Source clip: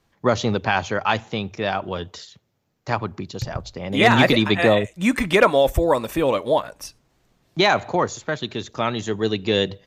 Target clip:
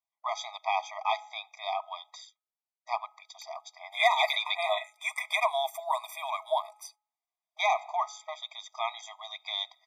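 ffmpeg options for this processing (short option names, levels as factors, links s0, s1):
-af "agate=range=0.1:threshold=0.00794:ratio=16:detection=peak,bandreject=f=421.4:t=h:w=4,bandreject=f=842.8:t=h:w=4,bandreject=f=1264.2:t=h:w=4,afftfilt=real='re*eq(mod(floor(b*sr/1024/640),2),1)':imag='im*eq(mod(floor(b*sr/1024/640),2),1)':win_size=1024:overlap=0.75,volume=0.531"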